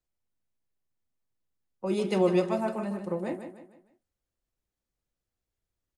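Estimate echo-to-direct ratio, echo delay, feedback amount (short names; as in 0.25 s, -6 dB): -8.5 dB, 0.153 s, 39%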